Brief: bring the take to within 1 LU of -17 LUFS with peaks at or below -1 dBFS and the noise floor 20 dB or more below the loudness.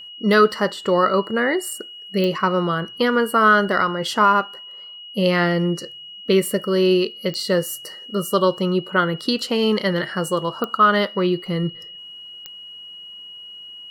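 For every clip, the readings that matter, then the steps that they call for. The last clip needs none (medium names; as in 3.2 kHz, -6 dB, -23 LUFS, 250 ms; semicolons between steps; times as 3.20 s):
clicks found 4; steady tone 2.9 kHz; tone level -36 dBFS; loudness -20.0 LUFS; peak level -5.0 dBFS; loudness target -17.0 LUFS
-> de-click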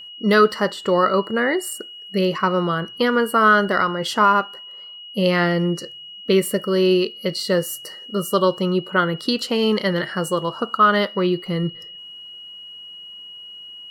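clicks found 0; steady tone 2.9 kHz; tone level -36 dBFS
-> band-stop 2.9 kHz, Q 30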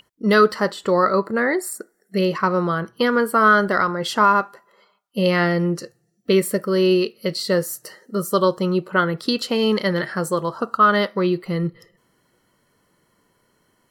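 steady tone not found; loudness -20.0 LUFS; peak level -5.0 dBFS; loudness target -17.0 LUFS
-> trim +3 dB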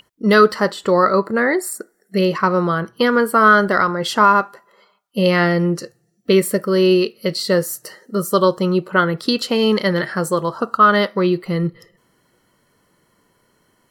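loudness -17.0 LUFS; peak level -2.0 dBFS; noise floor -63 dBFS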